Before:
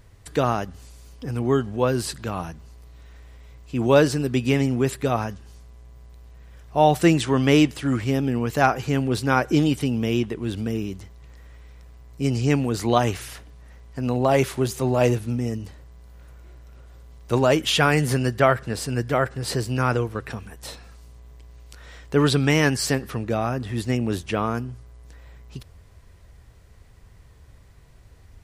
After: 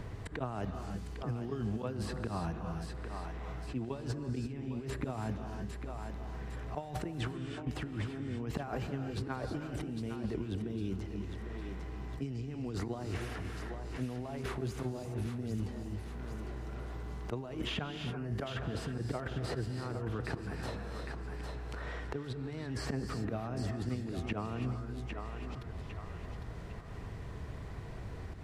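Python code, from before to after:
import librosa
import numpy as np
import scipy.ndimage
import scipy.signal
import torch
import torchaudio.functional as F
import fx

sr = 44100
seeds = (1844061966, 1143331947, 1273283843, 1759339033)

y = fx.lowpass(x, sr, hz=1000.0, slope=6)
y = fx.notch(y, sr, hz=540.0, q=12.0)
y = fx.auto_swell(y, sr, attack_ms=144.0)
y = fx.over_compress(y, sr, threshold_db=-33.0, ratio=-1.0)
y = fx.echo_thinned(y, sr, ms=804, feedback_pct=28, hz=420.0, wet_db=-11)
y = fx.rev_gated(y, sr, seeds[0], gate_ms=360, shape='rising', drr_db=8.0)
y = fx.band_squash(y, sr, depth_pct=70)
y = y * librosa.db_to_amplitude(-6.0)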